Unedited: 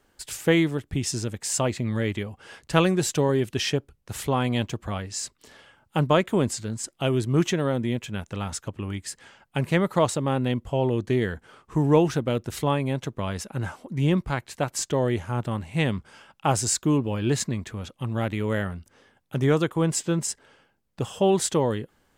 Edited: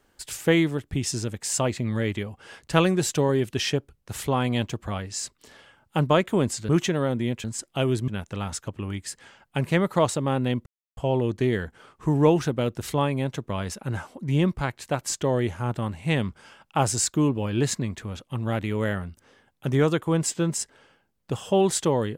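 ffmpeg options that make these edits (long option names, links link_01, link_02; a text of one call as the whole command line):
ffmpeg -i in.wav -filter_complex "[0:a]asplit=5[link_01][link_02][link_03][link_04][link_05];[link_01]atrim=end=6.692[link_06];[link_02]atrim=start=7.328:end=8.082[link_07];[link_03]atrim=start=6.688:end=7.332[link_08];[link_04]atrim=start=8.078:end=10.66,asetpts=PTS-STARTPTS,afade=type=out:start_time=2.578:duration=0.004:curve=hsin,apad=pad_dur=0.31[link_09];[link_05]atrim=start=10.66,asetpts=PTS-STARTPTS,afade=type=in:duration=0.004:curve=hsin[link_10];[link_06][link_07]acrossfade=duration=0.004:curve1=hsin:curve2=hsin[link_11];[link_11][link_08]acrossfade=duration=0.004:curve1=hsin:curve2=hsin[link_12];[link_09][link_10]concat=n=2:v=0:a=1[link_13];[link_12][link_13]acrossfade=duration=0.004:curve1=hsin:curve2=hsin" out.wav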